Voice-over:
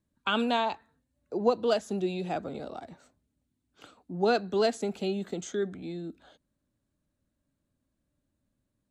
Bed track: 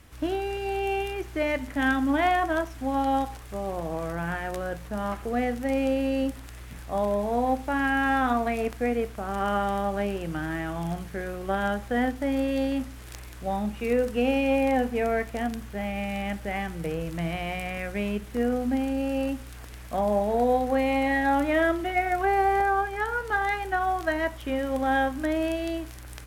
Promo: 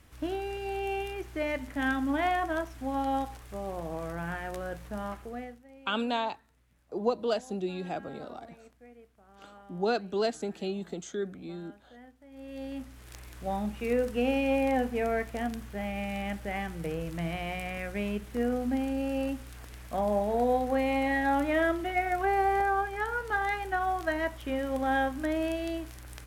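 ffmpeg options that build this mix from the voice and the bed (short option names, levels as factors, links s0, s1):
-filter_complex "[0:a]adelay=5600,volume=0.708[s0];[1:a]volume=8.41,afade=t=out:st=4.94:d=0.69:silence=0.0794328,afade=t=in:st=12.3:d=1.11:silence=0.0668344[s1];[s0][s1]amix=inputs=2:normalize=0"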